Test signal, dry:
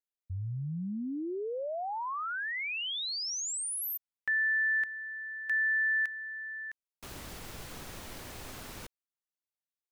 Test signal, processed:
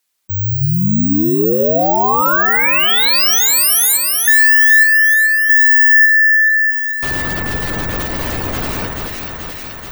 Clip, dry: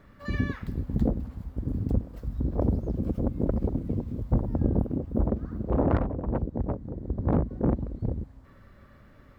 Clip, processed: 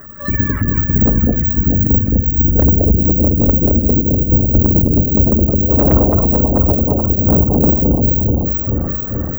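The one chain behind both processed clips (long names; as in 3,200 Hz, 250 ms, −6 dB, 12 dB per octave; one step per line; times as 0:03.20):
gate on every frequency bin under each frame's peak −20 dB strong
bad sample-rate conversion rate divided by 2×, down none, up zero stuff
automatic gain control gain up to 10.5 dB
on a send: delay that swaps between a low-pass and a high-pass 216 ms, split 1,700 Hz, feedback 77%, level −3 dB
on the sum: harmonic generator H 5 −12 dB, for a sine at 0.5 dBFS
in parallel at +1.5 dB: downward compressor, threshold −20 dBFS
on the sum: hum removal 127.6 Hz, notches 32
one half of a high-frequency compander encoder only
level −1.5 dB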